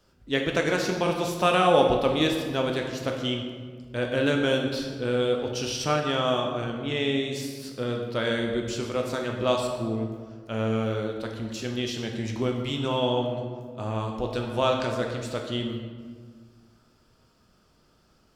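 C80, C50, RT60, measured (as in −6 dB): 6.0 dB, 4.5 dB, 1.7 s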